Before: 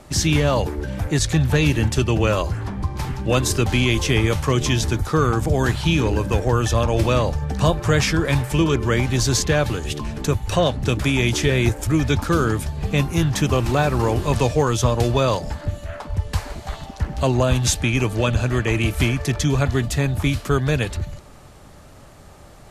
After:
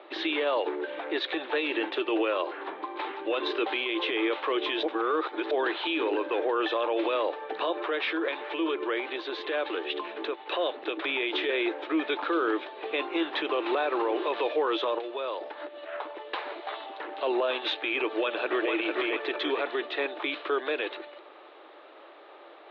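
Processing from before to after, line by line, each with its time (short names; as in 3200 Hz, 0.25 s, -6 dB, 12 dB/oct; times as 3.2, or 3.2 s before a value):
4.83–5.51 reverse
7.83–11.04 compressor, threshold -21 dBFS
14.98–16.03 compressor, threshold -27 dBFS
18.06–18.71 echo throw 0.45 s, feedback 30%, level -2 dB
whole clip: Chebyshev band-pass 320–3800 Hz, order 5; limiter -19 dBFS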